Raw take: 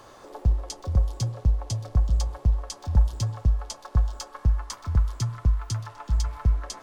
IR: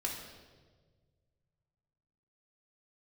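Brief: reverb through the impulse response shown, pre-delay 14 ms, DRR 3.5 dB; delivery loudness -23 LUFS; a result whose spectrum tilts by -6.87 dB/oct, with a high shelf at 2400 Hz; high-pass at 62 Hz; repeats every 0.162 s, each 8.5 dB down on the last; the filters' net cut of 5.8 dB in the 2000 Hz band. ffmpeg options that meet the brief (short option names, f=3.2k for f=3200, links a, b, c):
-filter_complex "[0:a]highpass=62,equalizer=f=2k:t=o:g=-5,highshelf=f=2.4k:g=-6.5,aecho=1:1:162|324|486|648:0.376|0.143|0.0543|0.0206,asplit=2[a][b];[1:a]atrim=start_sample=2205,adelay=14[c];[b][c]afir=irnorm=-1:irlink=0,volume=-6dB[d];[a][d]amix=inputs=2:normalize=0,volume=3.5dB"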